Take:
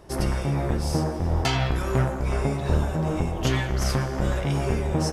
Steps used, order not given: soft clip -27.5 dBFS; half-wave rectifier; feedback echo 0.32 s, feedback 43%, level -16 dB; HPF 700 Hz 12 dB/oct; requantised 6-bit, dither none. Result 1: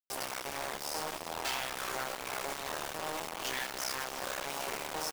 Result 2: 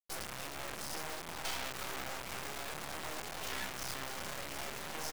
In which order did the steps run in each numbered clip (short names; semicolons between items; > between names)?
half-wave rectifier > HPF > soft clip > requantised > feedback echo; soft clip > feedback echo > requantised > HPF > half-wave rectifier